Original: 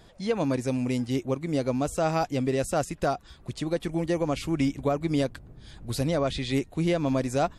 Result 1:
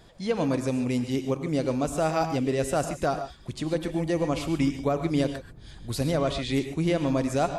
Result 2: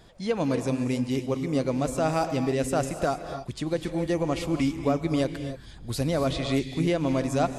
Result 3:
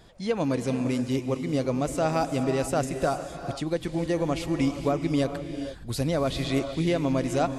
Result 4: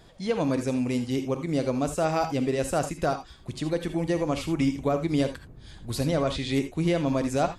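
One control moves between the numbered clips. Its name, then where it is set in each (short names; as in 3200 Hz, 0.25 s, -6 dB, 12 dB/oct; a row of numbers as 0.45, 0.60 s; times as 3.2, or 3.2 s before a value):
non-linear reverb, gate: 0.16, 0.31, 0.49, 0.1 s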